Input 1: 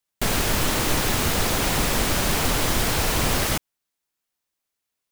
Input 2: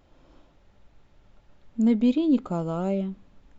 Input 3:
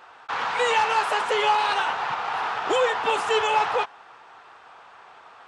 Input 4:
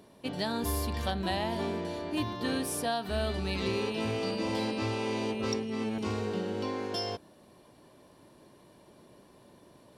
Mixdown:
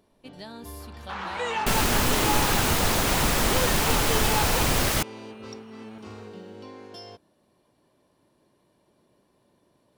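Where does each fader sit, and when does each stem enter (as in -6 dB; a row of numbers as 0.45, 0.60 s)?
-1.0, -14.5, -7.5, -9.0 dB; 1.45, 0.00, 0.80, 0.00 s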